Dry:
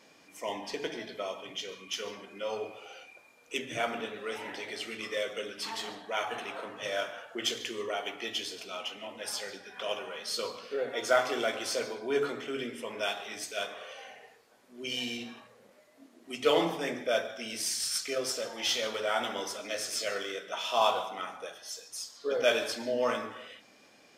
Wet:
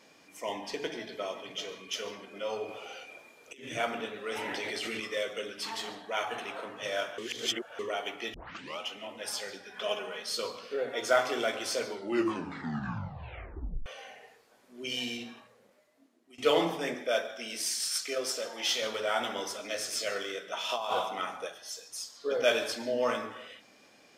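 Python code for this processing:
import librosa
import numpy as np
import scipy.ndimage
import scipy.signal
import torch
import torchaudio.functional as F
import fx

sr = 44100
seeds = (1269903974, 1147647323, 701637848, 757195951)

y = fx.echo_throw(x, sr, start_s=0.74, length_s=0.7, ms=380, feedback_pct=70, wet_db=-14.5)
y = fx.over_compress(y, sr, threshold_db=-45.0, ratio=-1.0, at=(2.68, 3.69))
y = fx.env_flatten(y, sr, amount_pct=100, at=(4.31, 5.0))
y = fx.comb(y, sr, ms=4.7, depth=0.58, at=(9.74, 10.22))
y = fx.bessel_highpass(y, sr, hz=240.0, order=2, at=(16.94, 18.82))
y = fx.over_compress(y, sr, threshold_db=-31.0, ratio=-1.0, at=(20.69, 21.48))
y = fx.edit(y, sr, fx.reverse_span(start_s=7.18, length_s=0.61),
    fx.tape_start(start_s=8.34, length_s=0.45),
    fx.tape_stop(start_s=11.84, length_s=2.02),
    fx.fade_out_to(start_s=15.08, length_s=1.3, floor_db=-18.5), tone=tone)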